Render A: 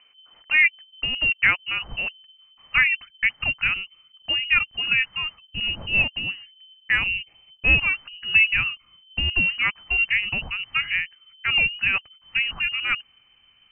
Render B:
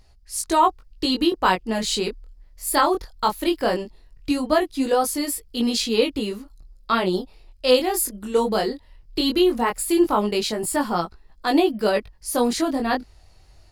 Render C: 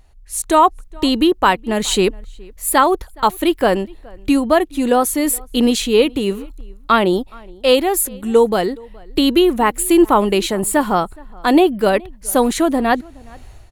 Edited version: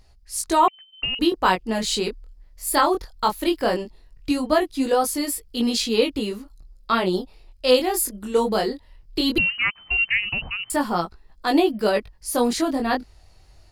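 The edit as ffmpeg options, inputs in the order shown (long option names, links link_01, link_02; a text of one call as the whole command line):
ffmpeg -i take0.wav -i take1.wav -filter_complex "[0:a]asplit=2[link_01][link_02];[1:a]asplit=3[link_03][link_04][link_05];[link_03]atrim=end=0.682[link_06];[link_01]atrim=start=0.678:end=1.192[link_07];[link_04]atrim=start=1.188:end=9.382[link_08];[link_02]atrim=start=9.378:end=10.702[link_09];[link_05]atrim=start=10.698[link_10];[link_06][link_07]acrossfade=duration=0.004:curve1=hsin:curve2=hsin[link_11];[link_11][link_08]acrossfade=duration=0.004:curve1=hsin:curve2=hsin[link_12];[link_12][link_09]acrossfade=duration=0.004:curve1=hsin:curve2=hsin[link_13];[link_13][link_10]acrossfade=duration=0.004:curve1=hsin:curve2=hsin" out.wav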